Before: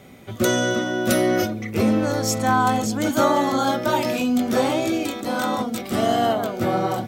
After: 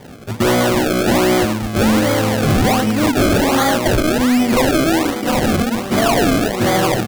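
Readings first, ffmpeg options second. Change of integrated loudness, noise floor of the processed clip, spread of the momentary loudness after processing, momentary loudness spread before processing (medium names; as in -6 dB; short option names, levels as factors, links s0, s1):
+6.0 dB, -26 dBFS, 3 LU, 6 LU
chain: -af "aresample=11025,volume=9.44,asoftclip=hard,volume=0.106,aresample=44100,acrusher=samples=32:mix=1:aa=0.000001:lfo=1:lforange=32:lforate=1.3,volume=2.66"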